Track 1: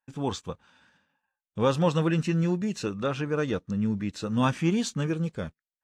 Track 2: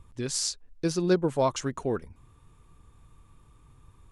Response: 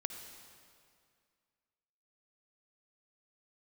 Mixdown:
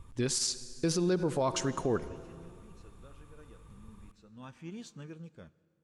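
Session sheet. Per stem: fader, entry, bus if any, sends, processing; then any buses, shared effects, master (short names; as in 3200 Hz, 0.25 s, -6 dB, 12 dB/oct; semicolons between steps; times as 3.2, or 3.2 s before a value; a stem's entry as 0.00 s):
-19.5 dB, 0.00 s, send -12.5 dB, auto duck -18 dB, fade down 0.20 s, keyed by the second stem
-1.0 dB, 0.00 s, send -7 dB, dry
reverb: on, RT60 2.2 s, pre-delay 51 ms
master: limiter -21 dBFS, peak gain reduction 9.5 dB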